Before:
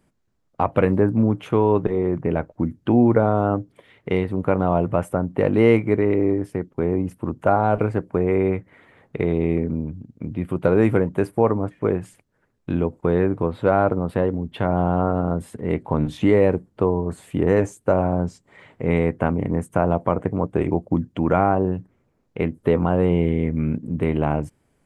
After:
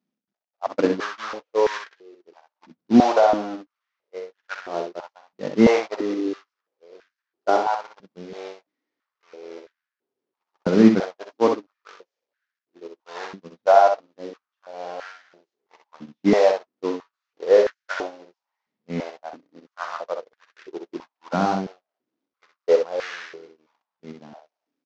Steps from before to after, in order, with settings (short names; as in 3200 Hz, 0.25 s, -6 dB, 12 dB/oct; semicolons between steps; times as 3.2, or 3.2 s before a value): delta modulation 32 kbps, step -20.5 dBFS; gate -15 dBFS, range -57 dB; dynamic EQ 1100 Hz, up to +4 dB, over -36 dBFS, Q 1.1; on a send: early reflections 48 ms -14.5 dB, 63 ms -6 dB; on the sum: stepped high-pass 3 Hz 210–1600 Hz; gain -3.5 dB